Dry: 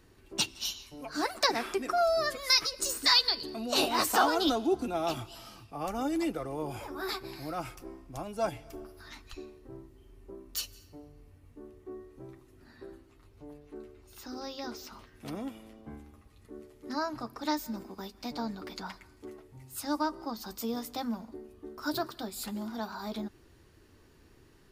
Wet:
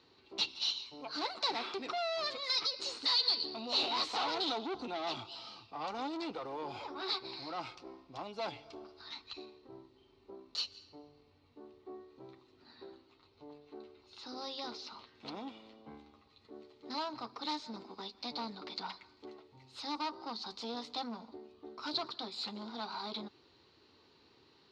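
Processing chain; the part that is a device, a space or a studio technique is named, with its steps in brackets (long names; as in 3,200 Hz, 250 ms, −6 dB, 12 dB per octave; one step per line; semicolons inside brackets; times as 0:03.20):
guitar amplifier (tube saturation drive 33 dB, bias 0.45; bass and treble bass −10 dB, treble +4 dB; loudspeaker in its box 96–4,500 Hz, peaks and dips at 340 Hz −3 dB, 620 Hz −4 dB, 890 Hz +3 dB, 1,700 Hz −8 dB, 4,100 Hz +10 dB)
level +1 dB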